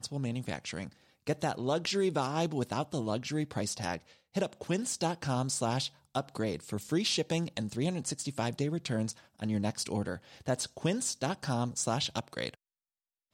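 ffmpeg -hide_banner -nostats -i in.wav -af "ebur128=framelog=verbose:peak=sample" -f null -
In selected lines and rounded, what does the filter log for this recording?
Integrated loudness:
  I:         -33.6 LUFS
  Threshold: -43.7 LUFS
Loudness range:
  LRA:         1.5 LU
  Threshold: -53.6 LUFS
  LRA low:   -34.3 LUFS
  LRA high:  -32.8 LUFS
Sample peak:
  Peak:      -18.5 dBFS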